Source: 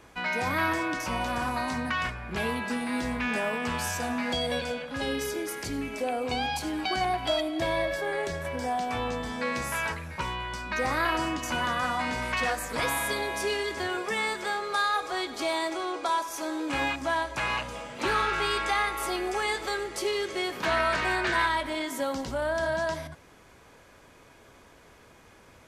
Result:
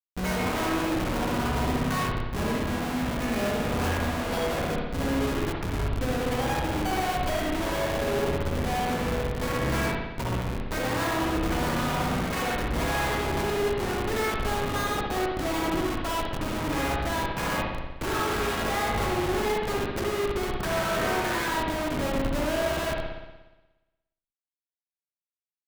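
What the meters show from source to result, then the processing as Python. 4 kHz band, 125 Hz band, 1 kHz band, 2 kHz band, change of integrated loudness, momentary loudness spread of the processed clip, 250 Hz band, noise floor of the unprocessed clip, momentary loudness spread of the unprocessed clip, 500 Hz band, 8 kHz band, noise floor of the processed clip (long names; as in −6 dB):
−1.0 dB, +9.5 dB, 0.0 dB, −2.0 dB, +1.5 dB, 3 LU, +4.5 dB, −55 dBFS, 6 LU, +2.5 dB, +1.0 dB, below −85 dBFS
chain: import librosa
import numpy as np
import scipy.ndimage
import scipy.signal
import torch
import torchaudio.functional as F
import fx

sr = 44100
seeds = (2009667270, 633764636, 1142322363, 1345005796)

y = fx.schmitt(x, sr, flips_db=-28.5)
y = fx.rev_spring(y, sr, rt60_s=1.1, pass_ms=(59,), chirp_ms=30, drr_db=-1.0)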